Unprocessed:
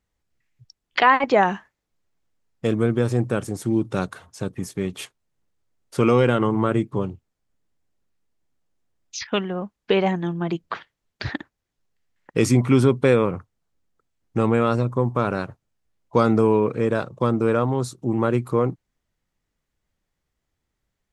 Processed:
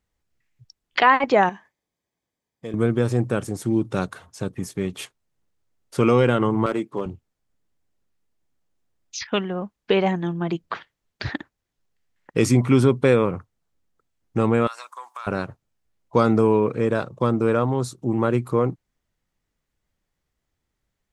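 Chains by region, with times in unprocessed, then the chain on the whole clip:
1.49–2.74 compressor 1.5:1, threshold -46 dBFS + notch comb 1400 Hz
6.66–7.06 HPF 290 Hz + hard clip -17 dBFS
14.67–15.27 HPF 1000 Hz 24 dB/oct + high shelf 5800 Hz +12 dB + compressor 5:1, threshold -31 dBFS
whole clip: dry

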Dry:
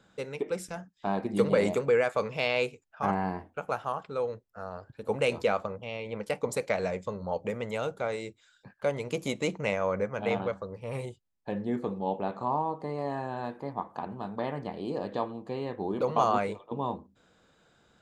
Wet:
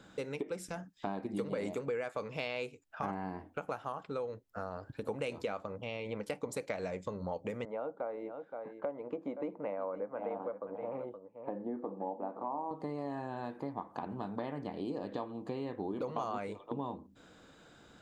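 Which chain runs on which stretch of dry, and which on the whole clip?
7.65–12.71 Butterworth band-pass 560 Hz, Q 0.69 + bell 400 Hz -8.5 dB 0.29 oct + echo 0.521 s -14 dB
whole clip: bell 290 Hz +7 dB 0.33 oct; compressor 4:1, threshold -42 dBFS; gain +5 dB

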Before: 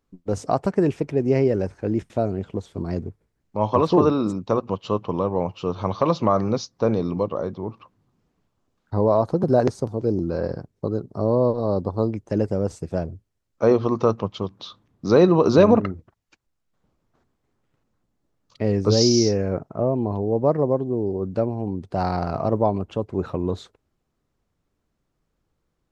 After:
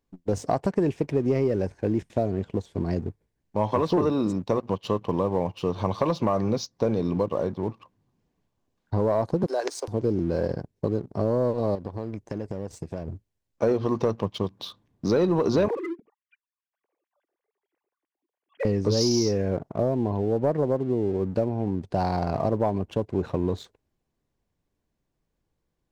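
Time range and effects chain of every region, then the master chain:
9.46–9.88 steep high-pass 280 Hz 96 dB/oct + tilt shelf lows -8.5 dB, about 740 Hz + compressor 1.5:1, threshold -34 dBFS
11.75–13.08 compressor 5:1, threshold -30 dBFS + short-mantissa float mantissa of 8-bit
15.68–18.65 sine-wave speech + compressor 2.5:1, threshold -27 dBFS
whole clip: notch 1300 Hz, Q 5.8; sample leveller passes 1; compressor 3:1, threshold -19 dBFS; gain -2 dB

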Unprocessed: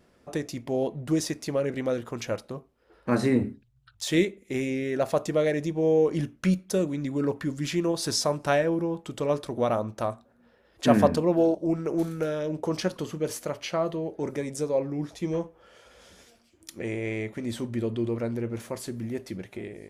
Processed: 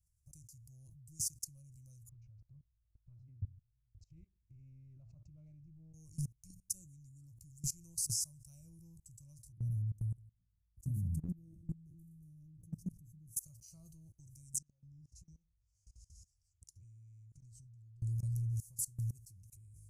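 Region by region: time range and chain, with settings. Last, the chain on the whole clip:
2.09–5.94 LPF 2300 Hz 24 dB/oct + dynamic EQ 130 Hz, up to -4 dB, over -44 dBFS, Q 5.3 + compressor 10:1, threshold -30 dBFS
9.52–13.37 EQ curve 130 Hz 0 dB, 200 Hz +14 dB, 470 Hz -5 dB, 1100 Hz -30 dB, 4300 Hz -27 dB, 12000 Hz -12 dB + echo 0.149 s -19 dB
14.58–18.02 LPF 5300 Hz + bell 710 Hz -3 dB 0.56 oct + compressor, threshold -42 dBFS
whole clip: inverse Chebyshev band-stop 210–3700 Hz, stop band 40 dB; band shelf 1100 Hz -8.5 dB; level quantiser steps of 22 dB; gain +9 dB

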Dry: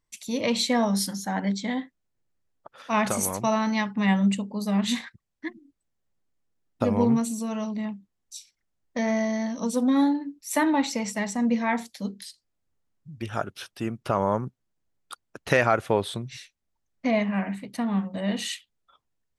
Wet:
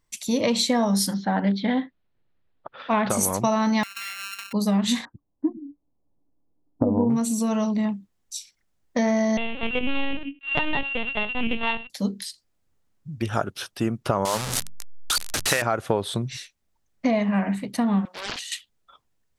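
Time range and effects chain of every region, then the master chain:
1.14–3.1 steep low-pass 4100 Hz + Doppler distortion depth 0.12 ms
3.83–4.53 sample sorter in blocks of 32 samples + resonant high-pass 2100 Hz, resonance Q 5.5 + compressor 10:1, threshold -35 dBFS
5.05–7.1 steep low-pass 1000 Hz + bell 290 Hz +14 dB 0.22 oct
9.37–11.9 sample sorter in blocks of 16 samples + tilt +3 dB/oct + LPC vocoder at 8 kHz pitch kept
14.25–15.62 delta modulation 64 kbps, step -25 dBFS + tilt shelf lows -7 dB, about 1100 Hz + notches 50/100/150/200/250 Hz
18.05–18.52 HPF 1400 Hz + negative-ratio compressor -39 dBFS + Doppler distortion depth 0.87 ms
whole clip: compressor, threshold -25 dBFS; dynamic EQ 2300 Hz, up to -4 dB, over -49 dBFS, Q 1.5; gain +7 dB

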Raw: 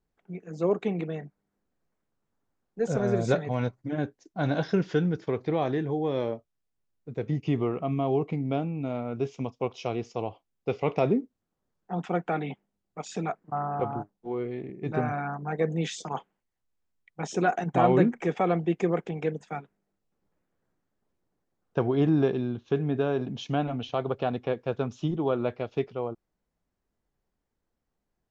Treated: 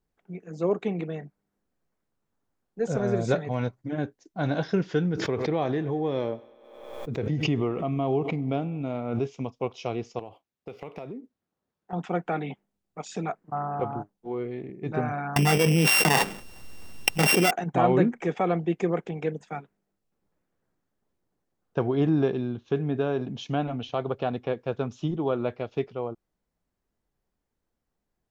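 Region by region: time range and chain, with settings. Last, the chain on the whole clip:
5.15–9.25 thinning echo 97 ms, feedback 70%, high-pass 230 Hz, level -21 dB + backwards sustainer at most 47 dB/s
10.19–11.93 median filter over 5 samples + HPF 130 Hz 6 dB/oct + compressor, threshold -35 dBFS
15.36–17.51 sample sorter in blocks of 16 samples + fast leveller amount 100%
whole clip: dry

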